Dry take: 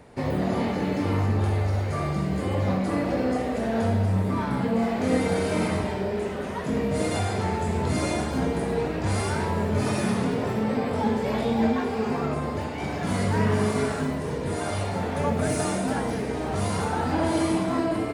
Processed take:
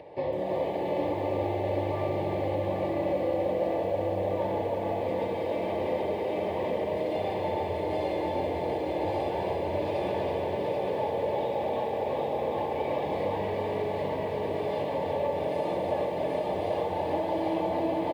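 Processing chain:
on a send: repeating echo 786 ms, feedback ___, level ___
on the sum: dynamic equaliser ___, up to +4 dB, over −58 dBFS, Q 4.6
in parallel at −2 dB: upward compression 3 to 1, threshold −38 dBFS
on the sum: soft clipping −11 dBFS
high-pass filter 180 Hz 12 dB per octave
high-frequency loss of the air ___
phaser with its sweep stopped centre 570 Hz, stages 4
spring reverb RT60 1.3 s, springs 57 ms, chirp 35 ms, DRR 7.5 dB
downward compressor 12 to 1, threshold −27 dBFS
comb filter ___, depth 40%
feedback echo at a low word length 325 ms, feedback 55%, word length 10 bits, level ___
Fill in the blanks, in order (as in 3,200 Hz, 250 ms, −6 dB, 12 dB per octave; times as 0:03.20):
55%, −3 dB, 3,400 Hz, 420 metres, 3.5 ms, −4 dB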